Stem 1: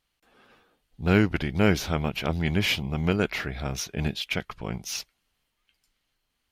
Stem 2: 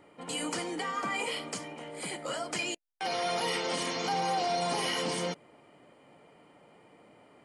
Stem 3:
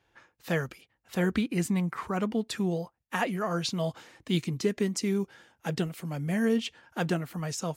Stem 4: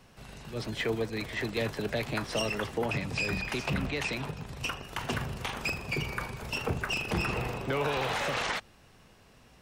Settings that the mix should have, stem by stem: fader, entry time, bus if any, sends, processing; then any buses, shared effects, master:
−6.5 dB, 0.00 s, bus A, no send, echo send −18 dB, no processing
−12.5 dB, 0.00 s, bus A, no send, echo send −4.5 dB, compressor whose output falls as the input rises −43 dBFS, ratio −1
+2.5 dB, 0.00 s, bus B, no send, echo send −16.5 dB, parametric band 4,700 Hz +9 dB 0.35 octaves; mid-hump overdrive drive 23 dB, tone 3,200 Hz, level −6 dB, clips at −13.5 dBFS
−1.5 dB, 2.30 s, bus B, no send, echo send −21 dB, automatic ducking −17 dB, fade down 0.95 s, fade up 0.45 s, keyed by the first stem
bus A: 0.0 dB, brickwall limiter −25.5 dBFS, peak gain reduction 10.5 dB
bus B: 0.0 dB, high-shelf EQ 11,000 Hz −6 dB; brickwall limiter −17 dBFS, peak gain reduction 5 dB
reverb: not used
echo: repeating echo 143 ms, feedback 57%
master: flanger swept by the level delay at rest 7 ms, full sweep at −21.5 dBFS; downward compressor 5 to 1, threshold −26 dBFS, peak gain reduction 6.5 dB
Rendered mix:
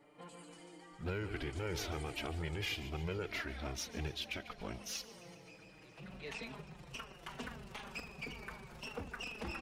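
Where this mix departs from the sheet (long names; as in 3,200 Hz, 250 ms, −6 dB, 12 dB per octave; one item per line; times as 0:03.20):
stem 3: muted
stem 4 −1.5 dB → −9.0 dB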